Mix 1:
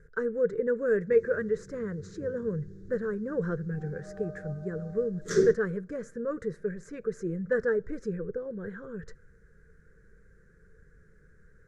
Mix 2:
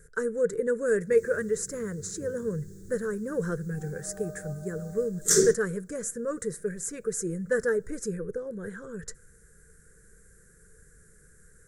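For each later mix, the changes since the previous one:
master: remove high-frequency loss of the air 260 metres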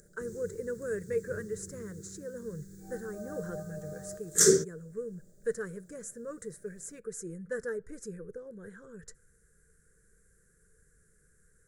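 speech −9.5 dB
background: entry −0.90 s

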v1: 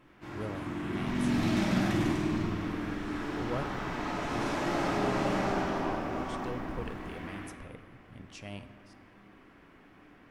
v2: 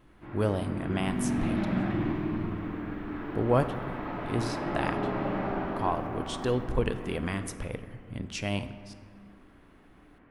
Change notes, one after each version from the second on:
speech +12.0 dB
first sound: add high-frequency loss of the air 440 metres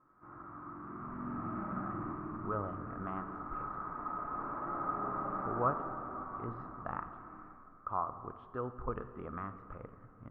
speech: entry +2.10 s
master: add transistor ladder low-pass 1,300 Hz, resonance 85%

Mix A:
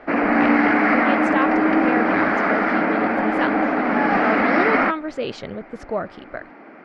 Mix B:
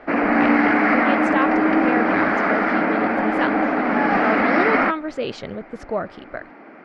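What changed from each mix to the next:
reverb: on, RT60 1.3 s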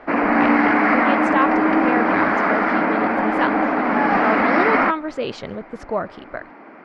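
speech: send +6.5 dB
master: add parametric band 1,000 Hz +5.5 dB 0.4 octaves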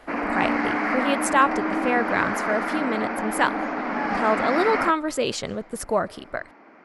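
background −9.0 dB
master: remove high-frequency loss of the air 200 metres

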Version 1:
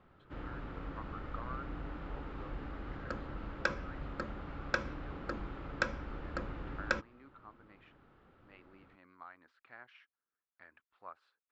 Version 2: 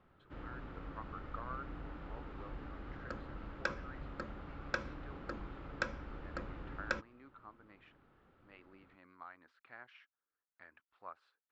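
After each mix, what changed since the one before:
background −4.0 dB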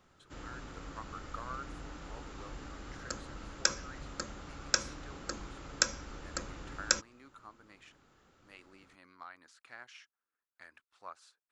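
master: remove high-frequency loss of the air 440 metres

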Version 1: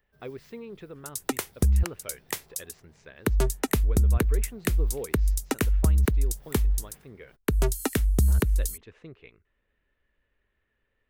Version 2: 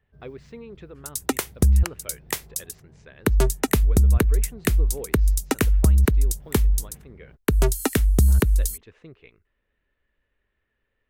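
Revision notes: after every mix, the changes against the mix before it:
first sound: add spectral tilt −4 dB per octave
second sound +4.5 dB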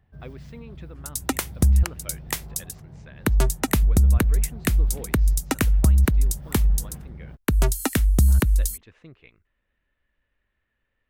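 first sound +9.5 dB
master: add parametric band 420 Hz −7 dB 0.46 octaves

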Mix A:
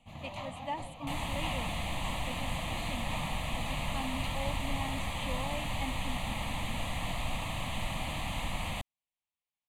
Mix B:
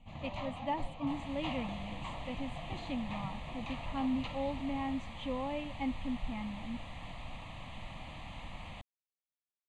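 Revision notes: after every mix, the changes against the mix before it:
speech: add low-shelf EQ 350 Hz +11 dB
second sound −10.0 dB
master: add high-frequency loss of the air 98 metres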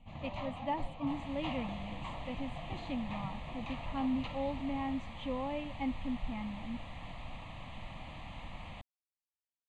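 master: add high-shelf EQ 5,200 Hz −6.5 dB

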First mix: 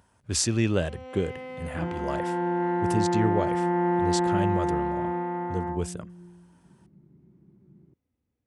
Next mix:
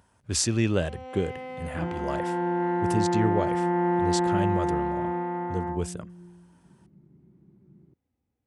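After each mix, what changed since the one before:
first sound: add parametric band 800 Hz +7.5 dB 0.21 octaves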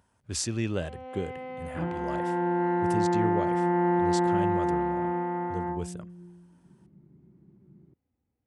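speech −5.5 dB
first sound: add high-frequency loss of the air 240 metres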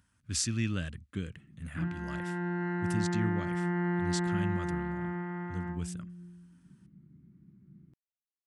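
first sound: muted
master: add flat-topped bell 590 Hz −14 dB

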